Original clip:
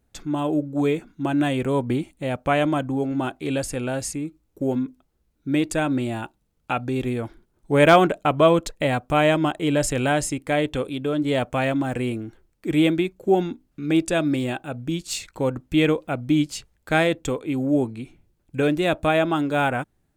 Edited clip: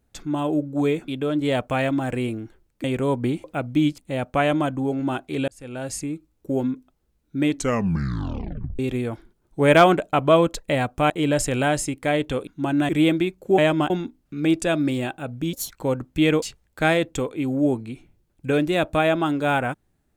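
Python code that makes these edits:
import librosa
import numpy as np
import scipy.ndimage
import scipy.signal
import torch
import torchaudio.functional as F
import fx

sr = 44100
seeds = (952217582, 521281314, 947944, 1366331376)

y = fx.edit(x, sr, fx.swap(start_s=1.08, length_s=0.42, other_s=10.91, other_length_s=1.76),
    fx.fade_in_span(start_s=3.6, length_s=0.55),
    fx.tape_stop(start_s=5.56, length_s=1.35),
    fx.move(start_s=9.22, length_s=0.32, to_s=13.36),
    fx.speed_span(start_s=14.99, length_s=0.27, speed=1.57),
    fx.move(start_s=15.98, length_s=0.54, to_s=2.1), tone=tone)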